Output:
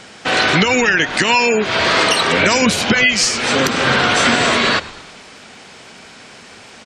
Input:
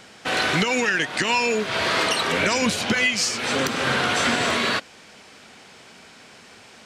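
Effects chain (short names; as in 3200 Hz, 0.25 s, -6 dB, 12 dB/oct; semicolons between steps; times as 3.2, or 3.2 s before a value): frequency-shifting echo 0.11 s, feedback 60%, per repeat -78 Hz, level -19.5 dB; spectral gate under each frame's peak -30 dB strong; gain +7.5 dB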